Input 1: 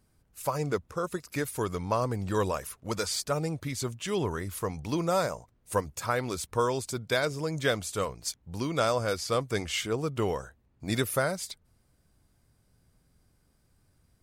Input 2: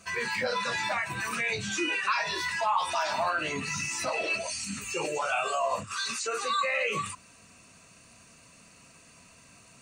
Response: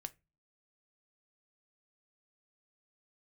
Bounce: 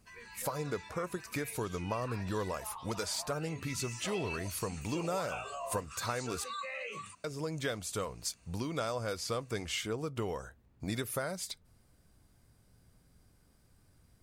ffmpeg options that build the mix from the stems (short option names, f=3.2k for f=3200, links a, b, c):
-filter_complex "[0:a]acompressor=threshold=-37dB:ratio=3,volume=-1dB,asplit=3[a][b][c];[a]atrim=end=6.44,asetpts=PTS-STARTPTS,afade=t=out:st=6.436:d=0.004:c=hsin[d];[b]atrim=start=6.44:end=7.24,asetpts=PTS-STARTPTS,volume=0[e];[c]atrim=start=7.24,asetpts=PTS-STARTPTS,afade=t=in:d=0.004:c=hsin[f];[d][e][f]concat=n=3:v=0:a=1,asplit=2[g][h];[h]volume=-4dB[i];[1:a]volume=-12.5dB,afade=t=in:st=3.29:d=0.65:silence=0.421697[j];[2:a]atrim=start_sample=2205[k];[i][k]afir=irnorm=-1:irlink=0[l];[g][j][l]amix=inputs=3:normalize=0"